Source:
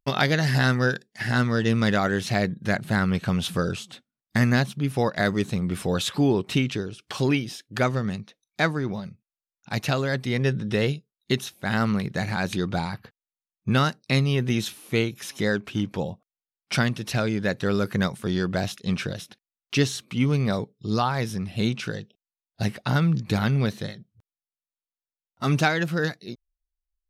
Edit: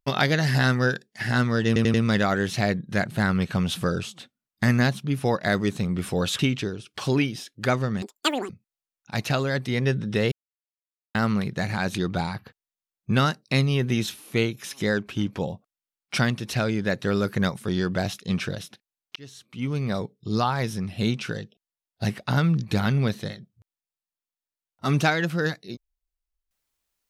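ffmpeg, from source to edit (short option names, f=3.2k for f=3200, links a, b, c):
-filter_complex "[0:a]asplit=10[a][b][c][d][e][f][g][h][i][j];[a]atrim=end=1.762[k];[b]atrim=start=1.668:end=1.762[l];[c]atrim=start=1.668:end=1.762[m];[d]atrim=start=1.668:end=6.122[n];[e]atrim=start=6.518:end=8.154[o];[f]atrim=start=8.15:end=9.08,asetpts=PTS-STARTPTS,asetrate=85995,aresample=44100,atrim=end_sample=21032,asetpts=PTS-STARTPTS[p];[g]atrim=start=9.076:end=10.9,asetpts=PTS-STARTPTS,afade=t=out:st=1.82:d=0.004:c=hsin[q];[h]atrim=start=10.9:end=11.73,asetpts=PTS-STARTPTS,volume=0[r];[i]atrim=start=11.73:end=19.74,asetpts=PTS-STARTPTS,afade=t=in:d=0.004:c=hsin,afade=t=out:st=8.006:d=0.004:c=hsin[s];[j]atrim=start=19.74,asetpts=PTS-STARTPTS,afade=t=in:d=1.02[t];[k][l]acrossfade=d=0.004:c1=hsin:c2=hsin[u];[u][m]acrossfade=d=0.004:c1=hsin:c2=hsin[v];[v][n]acrossfade=d=0.004:c1=hsin:c2=hsin[w];[w][o]acrossfade=d=0.004:c1=hsin:c2=hsin[x];[x][p]acrossfade=d=0.004:c1=hsin:c2=hsin[y];[q][r][s][t]concat=n=4:v=0:a=1[z];[y][z]acrossfade=d=0.004:c1=hsin:c2=hsin"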